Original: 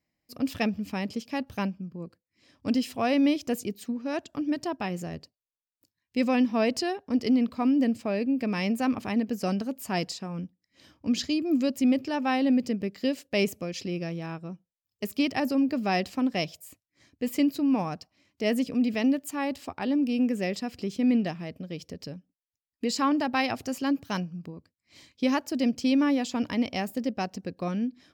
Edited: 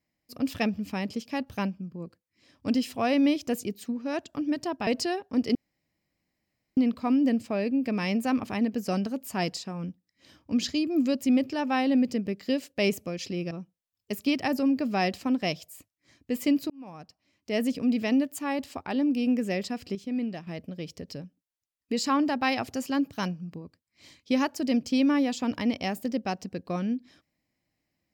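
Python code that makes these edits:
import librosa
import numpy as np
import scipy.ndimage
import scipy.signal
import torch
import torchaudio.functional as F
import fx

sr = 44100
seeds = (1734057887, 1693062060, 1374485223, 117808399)

y = fx.edit(x, sr, fx.cut(start_s=4.87, length_s=1.77),
    fx.insert_room_tone(at_s=7.32, length_s=1.22),
    fx.cut(start_s=14.06, length_s=0.37),
    fx.fade_in_span(start_s=17.62, length_s=1.04),
    fx.clip_gain(start_s=20.87, length_s=0.52, db=-7.0), tone=tone)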